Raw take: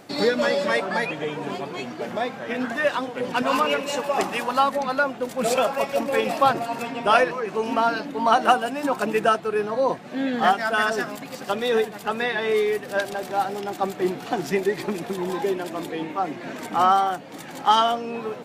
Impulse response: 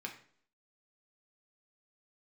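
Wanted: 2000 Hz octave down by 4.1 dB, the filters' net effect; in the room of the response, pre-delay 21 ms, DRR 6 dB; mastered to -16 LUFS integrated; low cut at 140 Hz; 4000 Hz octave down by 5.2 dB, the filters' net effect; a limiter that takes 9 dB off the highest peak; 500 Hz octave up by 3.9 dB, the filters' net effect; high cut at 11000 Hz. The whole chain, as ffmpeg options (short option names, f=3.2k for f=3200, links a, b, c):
-filter_complex "[0:a]highpass=140,lowpass=11k,equalizer=f=500:t=o:g=5,equalizer=f=2k:t=o:g=-5,equalizer=f=4k:t=o:g=-5,alimiter=limit=-11.5dB:level=0:latency=1,asplit=2[a][b];[1:a]atrim=start_sample=2205,adelay=21[c];[b][c]afir=irnorm=-1:irlink=0,volume=-5.5dB[d];[a][d]amix=inputs=2:normalize=0,volume=7dB"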